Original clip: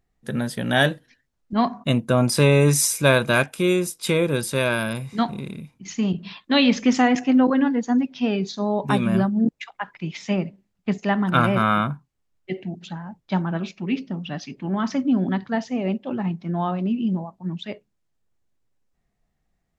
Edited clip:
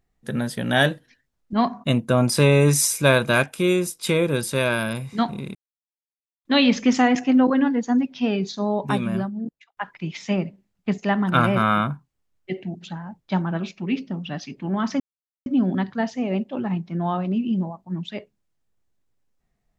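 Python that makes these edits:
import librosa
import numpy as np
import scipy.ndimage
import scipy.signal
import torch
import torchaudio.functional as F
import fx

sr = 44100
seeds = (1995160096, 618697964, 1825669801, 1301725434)

y = fx.edit(x, sr, fx.silence(start_s=5.55, length_s=0.9),
    fx.fade_out_span(start_s=8.69, length_s=1.08),
    fx.insert_silence(at_s=15.0, length_s=0.46), tone=tone)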